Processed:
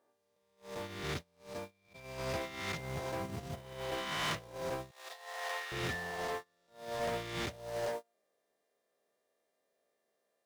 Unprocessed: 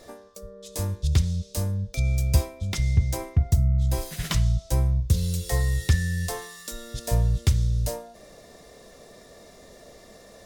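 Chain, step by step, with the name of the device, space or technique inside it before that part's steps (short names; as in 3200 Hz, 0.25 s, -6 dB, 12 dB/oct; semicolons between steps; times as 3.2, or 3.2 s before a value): spectral swells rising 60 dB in 2.14 s; aircraft radio (BPF 360–2400 Hz; hard clip -32.5 dBFS, distortion -10 dB; buzz 400 Hz, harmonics 32, -56 dBFS -2 dB/oct; white noise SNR 22 dB; gate -34 dBFS, range -43 dB); 4.91–5.72 HPF 640 Hz 24 dB/oct; gain +9 dB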